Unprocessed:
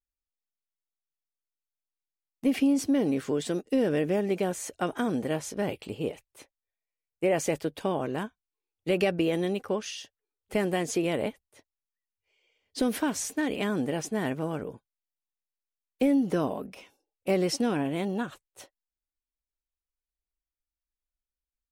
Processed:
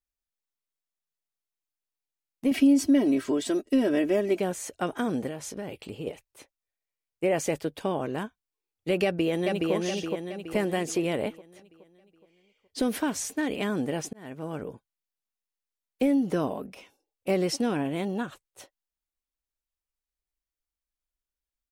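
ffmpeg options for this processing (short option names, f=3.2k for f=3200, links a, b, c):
-filter_complex "[0:a]asettb=1/sr,asplit=3[a][b][c];[a]atrim=end=2.514[d];[b]atrim=start=2.51:end=4.39,asetpts=PTS-STARTPTS,afade=t=in:d=0.004:c=qsin,afade=t=out:st=1.876:d=0.004:c=qsin,aecho=1:1:3.1:0.82,atrim=end_sample=82908[e];[c]atrim=start=4.386[f];[d][e]acrossfade=d=0.004:c1=hsin:c2=qsin[g];[g][f]acrossfade=d=0.004:c1=qsin:c2=hsin,asettb=1/sr,asplit=3[h][i][j];[h]atrim=end=5.284[k];[i]atrim=start=5.28:end=6.07,asetpts=PTS-STARTPTS,afade=t=in:d=0.004:c=qsin,afade=t=out:st=0.786:d=0.004:c=qsin,acompressor=threshold=-32dB:ratio=4:attack=3.2:release=140:knee=1:detection=peak[l];[j]atrim=start=6.066[m];[k][l]acrossfade=d=0.004:c1=hsin:c2=qsin[n];[n][m]acrossfade=d=0.004:c1=qsin:c2=hsin,asplit=2[o][p];[p]afade=t=in:st=9.04:d=0.01,afade=t=out:st=9.73:d=0.01,aecho=0:1:420|840|1260|1680|2100|2520|2940:0.794328|0.397164|0.198582|0.099291|0.0496455|0.0248228|0.0124114[q];[o][q]amix=inputs=2:normalize=0,asplit=2[r][s];[r]atrim=end=14.13,asetpts=PTS-STARTPTS,afade=t=out:st=14.126:d=0.004:c=hsin[t];[s]atrim=start=14.13,asetpts=PTS-STARTPTS,afade=t=in:d=0.52[u];[t][u]concat=n=2:v=0:a=1"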